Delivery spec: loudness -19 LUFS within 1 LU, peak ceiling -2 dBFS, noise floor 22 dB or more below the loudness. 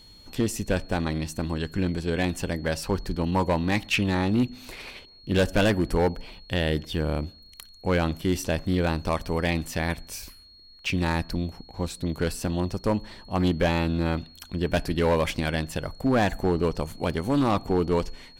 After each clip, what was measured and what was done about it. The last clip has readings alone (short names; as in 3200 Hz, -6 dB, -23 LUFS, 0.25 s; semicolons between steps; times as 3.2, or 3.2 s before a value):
clipped 1.1%; flat tops at -16.0 dBFS; steady tone 4300 Hz; tone level -50 dBFS; loudness -26.5 LUFS; peak -16.0 dBFS; loudness target -19.0 LUFS
-> clip repair -16 dBFS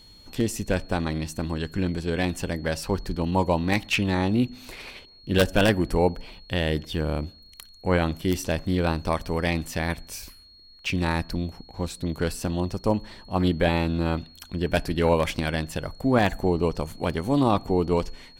clipped 0.0%; steady tone 4300 Hz; tone level -50 dBFS
-> notch 4300 Hz, Q 30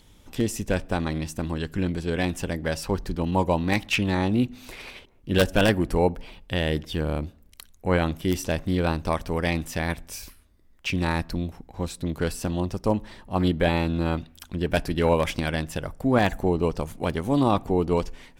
steady tone none; loudness -26.0 LUFS; peak -7.0 dBFS; loudness target -19.0 LUFS
-> gain +7 dB; limiter -2 dBFS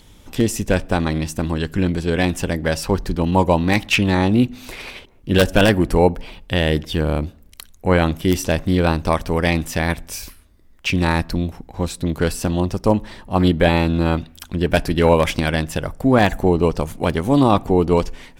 loudness -19.0 LUFS; peak -2.0 dBFS; noise floor -48 dBFS